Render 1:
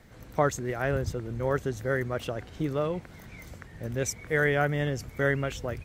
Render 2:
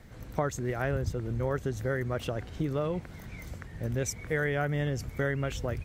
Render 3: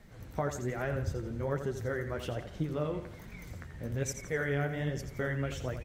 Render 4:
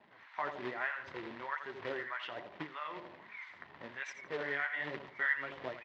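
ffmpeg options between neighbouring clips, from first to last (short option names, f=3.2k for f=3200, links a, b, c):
-af "lowshelf=f=170:g=5.5,acompressor=threshold=-27dB:ratio=3"
-af "flanger=delay=4.8:depth=9.7:regen=33:speed=1.2:shape=sinusoidal,aecho=1:1:85|170|255|340|425:0.335|0.141|0.0591|0.0248|0.0104"
-filter_complex "[0:a]acrossover=split=950[a][b];[a]aeval=exprs='val(0)*(1-1/2+1/2*cos(2*PI*1.6*n/s))':c=same[c];[b]aeval=exprs='val(0)*(1-1/2-1/2*cos(2*PI*1.6*n/s))':c=same[d];[c][d]amix=inputs=2:normalize=0,acrusher=bits=3:mode=log:mix=0:aa=0.000001,highpass=440,equalizer=f=490:t=q:w=4:g=-8,equalizer=f=1k:t=q:w=4:g=8,equalizer=f=1.9k:t=q:w=4:g=8,lowpass=f=3.6k:w=0.5412,lowpass=f=3.6k:w=1.3066,volume=3dB"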